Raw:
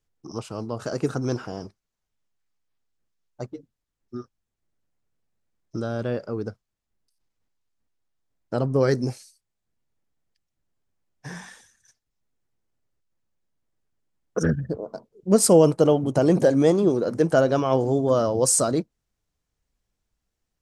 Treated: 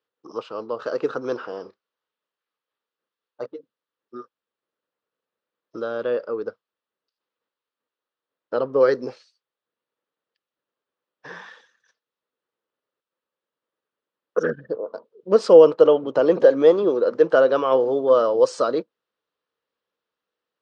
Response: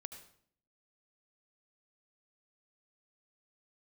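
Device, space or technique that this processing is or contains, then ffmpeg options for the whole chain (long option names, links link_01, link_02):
phone earpiece: -filter_complex "[0:a]asettb=1/sr,asplit=3[link_01][link_02][link_03];[link_01]atrim=end=1.634[link_04];[link_02]atrim=start=1.63:end=3.46,asetpts=PTS-STARTPTS,afade=type=in:duration=0.004:curve=qsin,afade=type=out:start_time=1.826:duration=0.004:curve=qsin,asplit=2[link_05][link_06];[link_06]adelay=31,volume=-7.5dB[link_07];[link_05][link_07]amix=inputs=2:normalize=0,atrim=end_sample=80703[link_08];[link_03]atrim=start=3.456[link_09];[link_04][link_08]acrossfade=duration=0.004:curve1=hsin:curve2=qsin[link_10];[link_10][link_09]acrossfade=duration=0.004:curve1=qsin:curve2=hsin,highpass=450,equalizer=frequency=490:width_type=q:width=4:gain=7,equalizer=frequency=730:width_type=q:width=4:gain=-7,equalizer=frequency=1200:width_type=q:width=4:gain=4,equalizer=frequency=2200:width_type=q:width=4:gain=-6,lowpass=frequency=3900:width=0.5412,lowpass=frequency=3900:width=1.3066,volume=3.5dB"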